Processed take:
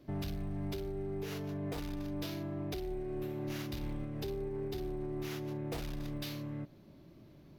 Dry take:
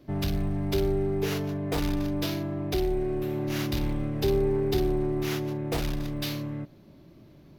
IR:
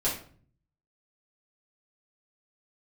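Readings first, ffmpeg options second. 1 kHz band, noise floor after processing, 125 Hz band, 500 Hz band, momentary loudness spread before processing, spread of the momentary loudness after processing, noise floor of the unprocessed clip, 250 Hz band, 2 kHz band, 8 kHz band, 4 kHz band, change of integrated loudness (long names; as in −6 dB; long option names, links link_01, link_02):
−11.0 dB, −58 dBFS, −10.0 dB, −12.0 dB, 6 LU, 4 LU, −53 dBFS, −10.0 dB, −11.0 dB, −11.0 dB, −11.0 dB, −11.0 dB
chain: -af "alimiter=level_in=1.5dB:limit=-24dB:level=0:latency=1:release=475,volume=-1.5dB,volume=-4.5dB"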